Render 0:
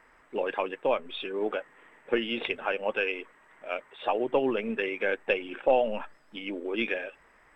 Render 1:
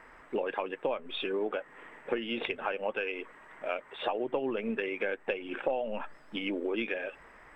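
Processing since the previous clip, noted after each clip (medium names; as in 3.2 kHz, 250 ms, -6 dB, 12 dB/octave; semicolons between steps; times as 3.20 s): compression 5:1, threshold -36 dBFS, peak gain reduction 16 dB; treble shelf 3.8 kHz -6.5 dB; trim +6.5 dB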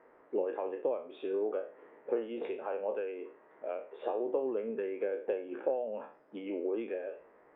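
spectral sustain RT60 0.41 s; band-pass filter 450 Hz, Q 1.7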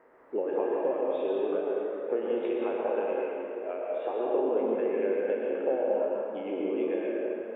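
plate-style reverb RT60 2.9 s, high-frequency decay 0.7×, pre-delay 95 ms, DRR -3.5 dB; trim +1.5 dB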